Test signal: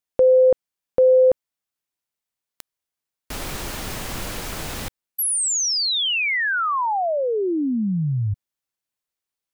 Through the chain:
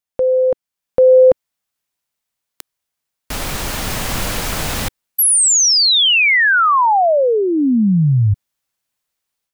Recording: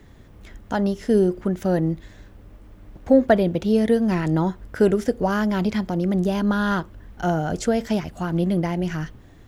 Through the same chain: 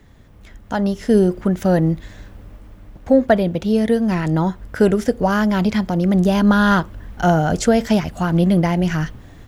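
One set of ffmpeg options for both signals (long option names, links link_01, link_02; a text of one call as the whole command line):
ffmpeg -i in.wav -af "dynaudnorm=framelen=590:gausssize=3:maxgain=9.5dB,equalizer=frequency=360:width=2.4:gain=-4" out.wav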